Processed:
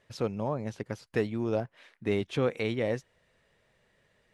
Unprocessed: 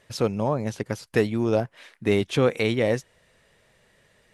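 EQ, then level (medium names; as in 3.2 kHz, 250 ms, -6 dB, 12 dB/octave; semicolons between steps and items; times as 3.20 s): treble shelf 6.9 kHz -10 dB; -7.0 dB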